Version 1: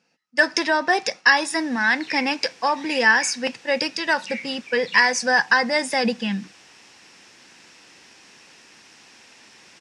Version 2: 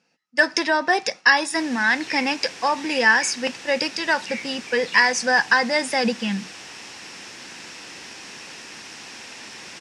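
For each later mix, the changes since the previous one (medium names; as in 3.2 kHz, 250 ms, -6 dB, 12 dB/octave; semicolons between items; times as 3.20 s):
background +10.5 dB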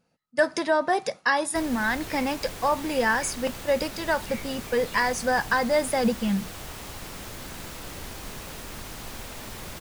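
speech -5.0 dB; master: remove cabinet simulation 260–8400 Hz, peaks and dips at 430 Hz -3 dB, 610 Hz -7 dB, 1.2 kHz -4 dB, 1.8 kHz +5 dB, 2.6 kHz +7 dB, 5.4 kHz +9 dB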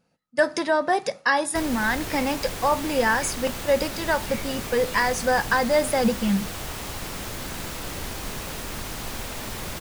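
background +5.5 dB; reverb: on, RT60 0.40 s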